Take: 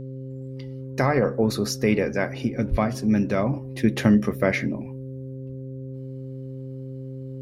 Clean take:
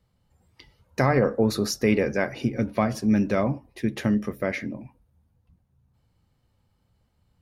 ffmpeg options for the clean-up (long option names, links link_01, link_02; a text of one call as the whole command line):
ffmpeg -i in.wav -filter_complex "[0:a]bandreject=frequency=132:width_type=h:width=4,bandreject=frequency=264:width_type=h:width=4,bandreject=frequency=396:width_type=h:width=4,bandreject=frequency=528:width_type=h:width=4,asplit=3[link_01][link_02][link_03];[link_01]afade=type=out:start_time=2.7:duration=0.02[link_04];[link_02]highpass=frequency=140:width=0.5412,highpass=frequency=140:width=1.3066,afade=type=in:start_time=2.7:duration=0.02,afade=type=out:start_time=2.82:duration=0.02[link_05];[link_03]afade=type=in:start_time=2.82:duration=0.02[link_06];[link_04][link_05][link_06]amix=inputs=3:normalize=0,asetnsamples=nb_out_samples=441:pad=0,asendcmd='3.53 volume volume -5.5dB',volume=0dB" out.wav